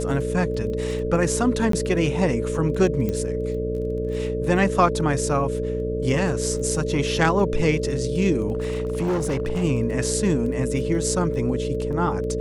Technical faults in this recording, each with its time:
buzz 60 Hz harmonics 10 -28 dBFS
crackle 14 per s
whine 440 Hz -26 dBFS
1.72–1.73 s: dropout 13 ms
3.09 s: pop -14 dBFS
8.53–9.64 s: clipped -19.5 dBFS

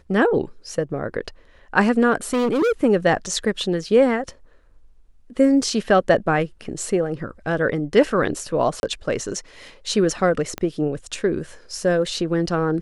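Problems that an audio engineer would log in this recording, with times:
2.33–2.72 s: clipped -16.5 dBFS
8.80–8.83 s: dropout 31 ms
10.58 s: pop -13 dBFS

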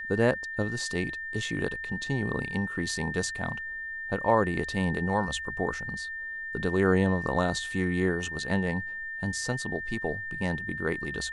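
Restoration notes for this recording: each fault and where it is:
whine 1.8 kHz -34 dBFS

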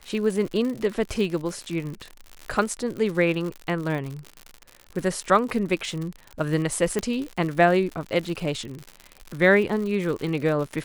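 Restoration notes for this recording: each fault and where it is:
crackle 95 per s -30 dBFS
6.99 s: pop -12 dBFS

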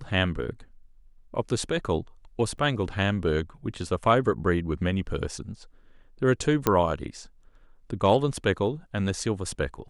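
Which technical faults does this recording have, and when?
2.58 s: dropout 2.2 ms
6.67 s: pop -7 dBFS

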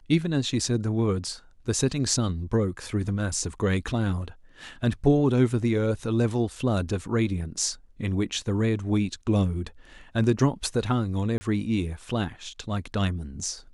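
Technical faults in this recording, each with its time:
11.38–11.41 s: dropout 30 ms

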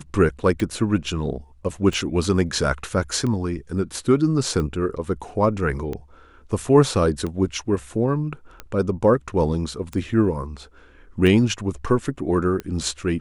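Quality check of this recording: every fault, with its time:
tick 45 rpm

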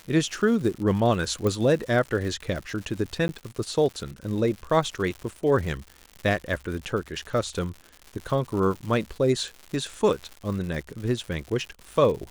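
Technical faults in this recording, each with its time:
crackle 170 per s -33 dBFS
1.47 s: pop -14 dBFS
3.28–3.29 s: dropout

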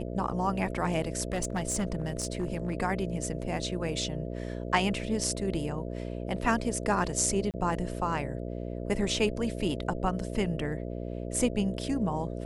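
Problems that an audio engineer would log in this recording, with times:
buzz 60 Hz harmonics 11 -36 dBFS
1.33–2.73 s: clipped -24.5 dBFS
7.51–7.54 s: dropout 28 ms

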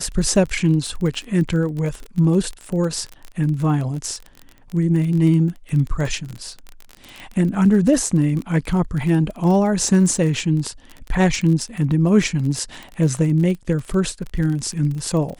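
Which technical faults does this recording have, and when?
crackle 28 per s -25 dBFS

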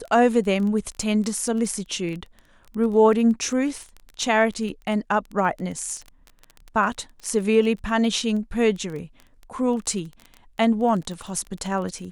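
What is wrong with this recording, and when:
crackle 18 per s -30 dBFS

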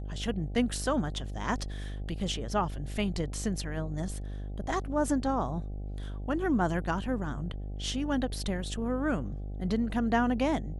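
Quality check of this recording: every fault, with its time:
buzz 50 Hz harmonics 16 -37 dBFS

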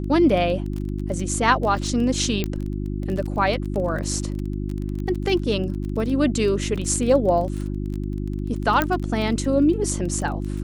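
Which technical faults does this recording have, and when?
crackle 21 per s -28 dBFS
hum 50 Hz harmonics 7 -27 dBFS
2.44 s: pop -11 dBFS
8.82 s: pop -6 dBFS

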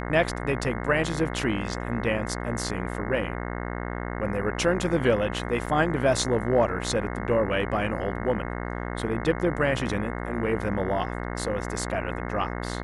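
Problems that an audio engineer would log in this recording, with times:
buzz 60 Hz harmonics 36 -32 dBFS
5.66–5.67 s: dropout 6.2 ms

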